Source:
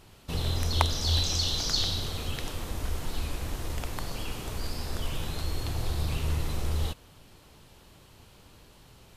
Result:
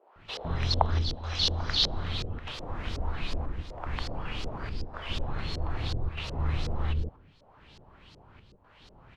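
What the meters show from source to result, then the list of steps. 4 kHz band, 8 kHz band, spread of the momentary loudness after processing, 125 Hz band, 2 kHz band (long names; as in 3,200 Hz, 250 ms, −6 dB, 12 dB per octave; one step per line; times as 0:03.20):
−0.5 dB, −11.0 dB, 12 LU, −1.0 dB, +0.5 dB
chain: square-wave tremolo 0.81 Hz, depth 65%, duty 80%
multiband delay without the direct sound highs, lows 160 ms, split 450 Hz
auto-filter low-pass saw up 2.7 Hz 470–5,300 Hz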